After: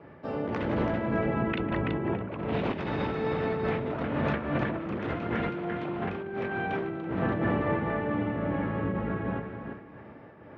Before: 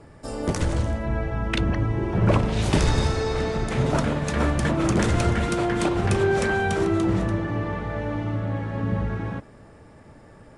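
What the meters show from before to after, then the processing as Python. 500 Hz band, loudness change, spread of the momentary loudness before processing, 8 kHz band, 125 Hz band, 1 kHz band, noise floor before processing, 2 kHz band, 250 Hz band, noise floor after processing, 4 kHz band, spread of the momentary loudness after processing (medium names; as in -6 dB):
-4.5 dB, -6.5 dB, 7 LU, under -30 dB, -10.0 dB, -4.5 dB, -49 dBFS, -5.0 dB, -4.5 dB, -49 dBFS, -12.0 dB, 6 LU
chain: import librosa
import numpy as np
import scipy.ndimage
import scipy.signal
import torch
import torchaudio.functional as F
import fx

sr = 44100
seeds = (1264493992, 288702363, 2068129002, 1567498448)

y = fx.octave_divider(x, sr, octaves=1, level_db=2.0)
y = scipy.signal.sosfilt(scipy.signal.butter(2, 190.0, 'highpass', fs=sr, output='sos'), y)
y = fx.echo_multitap(y, sr, ms=(150, 188, 332, 613), db=(-17.0, -18.5, -9.0, -16.0))
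y = fx.over_compress(y, sr, threshold_db=-27.0, ratio=-1.0)
y = scipy.signal.sosfilt(scipy.signal.butter(4, 2900.0, 'lowpass', fs=sr, output='sos'), y)
y = fx.am_noise(y, sr, seeds[0], hz=5.7, depth_pct=55)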